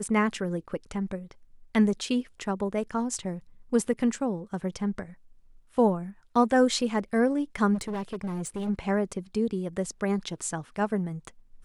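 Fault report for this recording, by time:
7.74–8.70 s: clipped -28.5 dBFS

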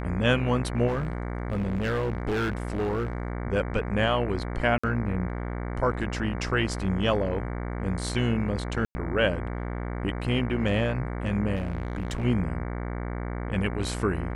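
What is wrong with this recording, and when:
buzz 60 Hz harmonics 38 -32 dBFS
0.87–3.32 s: clipped -23.5 dBFS
4.78–4.83 s: dropout 55 ms
8.85–8.95 s: dropout 100 ms
11.55–12.25 s: clipped -25 dBFS

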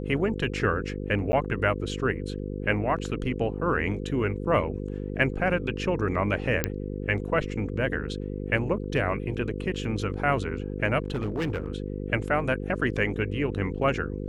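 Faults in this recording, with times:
buzz 50 Hz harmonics 10 -33 dBFS
1.32–1.33 s: dropout 10 ms
6.64 s: pop -8 dBFS
11.02–11.68 s: clipped -24 dBFS

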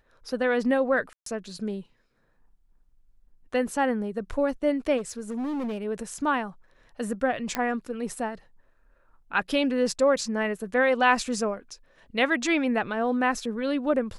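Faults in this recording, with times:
1.13–1.26 s: dropout 133 ms
4.97–5.85 s: clipped -27.5 dBFS
7.55 s: pop -11 dBFS

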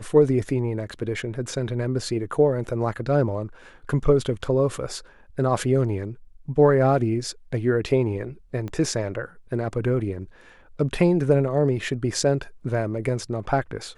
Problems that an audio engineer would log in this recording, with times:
8.68 s: pop -21 dBFS

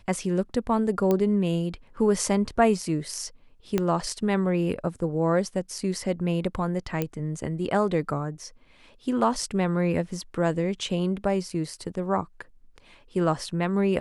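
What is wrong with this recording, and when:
1.11 s: pop -12 dBFS
3.78 s: pop -11 dBFS
7.02 s: pop -13 dBFS

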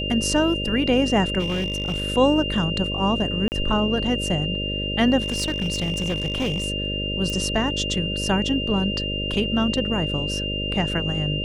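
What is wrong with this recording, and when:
buzz 50 Hz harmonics 12 -29 dBFS
whine 2.8 kHz -27 dBFS
1.39–2.02 s: clipped -20 dBFS
3.48–3.52 s: dropout 39 ms
5.22–6.66 s: clipped -19.5 dBFS
7.30 s: pop -15 dBFS

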